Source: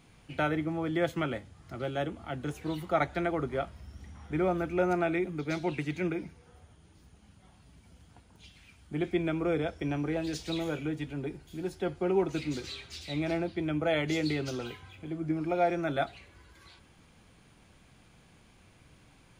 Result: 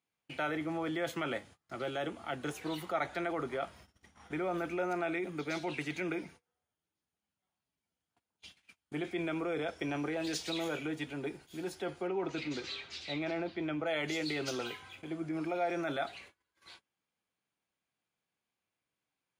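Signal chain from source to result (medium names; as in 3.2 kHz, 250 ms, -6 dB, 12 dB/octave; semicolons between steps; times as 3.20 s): high-pass 520 Hz 6 dB/octave; gate -56 dBFS, range -29 dB; in parallel at +1.5 dB: compressor with a negative ratio -38 dBFS, ratio -1; 12.07–13.86 s: on the sum: distance through air 110 m; trim -5.5 dB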